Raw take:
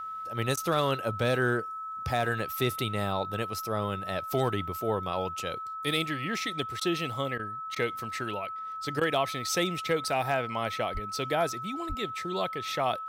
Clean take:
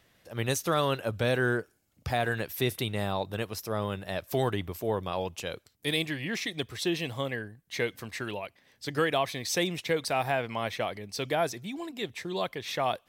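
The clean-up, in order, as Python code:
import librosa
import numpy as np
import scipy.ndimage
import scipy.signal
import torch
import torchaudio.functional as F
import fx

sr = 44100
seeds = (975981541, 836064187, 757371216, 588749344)

y = fx.fix_declip(x, sr, threshold_db=-16.0)
y = fx.notch(y, sr, hz=1300.0, q=30.0)
y = fx.fix_deplosive(y, sr, at_s=(10.93, 11.88))
y = fx.fix_interpolate(y, sr, at_s=(0.56, 6.8, 7.38, 7.75, 9.0), length_ms=11.0)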